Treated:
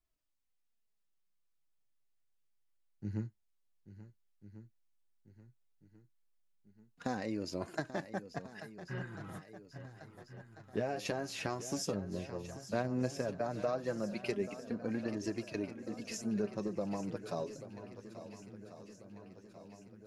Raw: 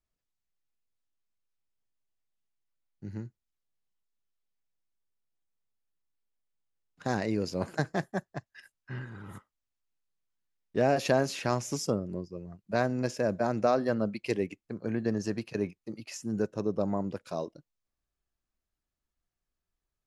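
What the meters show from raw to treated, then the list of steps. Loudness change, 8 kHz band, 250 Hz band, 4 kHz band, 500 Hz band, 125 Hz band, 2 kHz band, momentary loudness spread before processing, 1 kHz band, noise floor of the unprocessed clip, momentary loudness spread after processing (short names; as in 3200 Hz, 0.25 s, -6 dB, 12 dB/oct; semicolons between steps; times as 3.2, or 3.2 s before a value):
-8.0 dB, -4.0 dB, -6.0 dB, -5.0 dB, -7.5 dB, -6.5 dB, -7.0 dB, 16 LU, -8.5 dB, under -85 dBFS, 18 LU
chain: compressor, threshold -31 dBFS, peak gain reduction 11 dB; swung echo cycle 1.393 s, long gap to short 1.5:1, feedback 54%, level -13 dB; flange 0.13 Hz, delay 2.8 ms, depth 8.2 ms, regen +37%; gain +2.5 dB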